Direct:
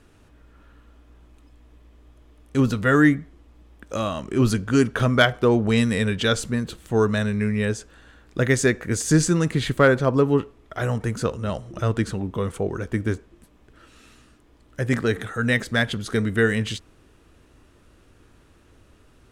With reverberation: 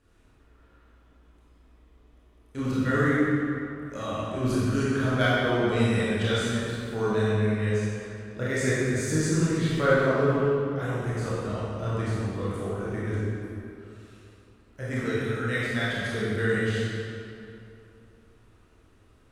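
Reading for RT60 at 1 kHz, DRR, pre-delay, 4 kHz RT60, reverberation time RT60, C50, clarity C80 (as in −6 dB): 2.8 s, −9.5 dB, 21 ms, 1.8 s, 2.8 s, −5.0 dB, −2.0 dB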